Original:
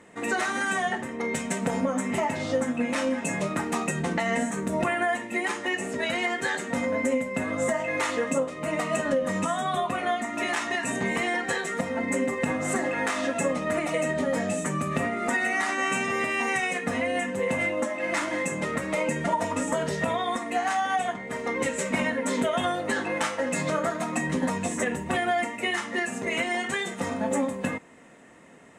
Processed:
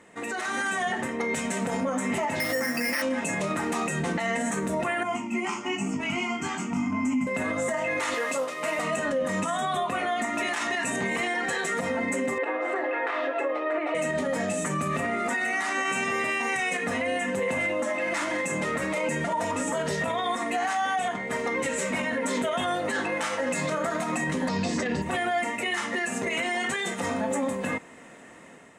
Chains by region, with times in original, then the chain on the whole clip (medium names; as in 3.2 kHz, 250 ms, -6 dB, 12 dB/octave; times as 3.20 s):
2.40–3.02 s: high-pass 150 Hz 6 dB/octave + peaking EQ 1.9 kHz +14.5 dB 0.46 oct + careless resampling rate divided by 6×, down filtered, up hold
5.03–7.27 s: peaking EQ 200 Hz +9.5 dB 2.3 oct + static phaser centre 2.6 kHz, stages 8 + chorus 1 Hz, delay 19 ms, depth 3.5 ms
8.14–8.79 s: CVSD coder 64 kbps + frequency weighting A
12.38–13.95 s: brick-wall FIR high-pass 280 Hz + distance through air 410 m
24.48–25.02 s: resonant low-pass 4.7 kHz, resonance Q 8 + bass shelf 480 Hz +8 dB
whole clip: bass shelf 480 Hz -3.5 dB; peak limiter -25 dBFS; level rider gain up to 5.5 dB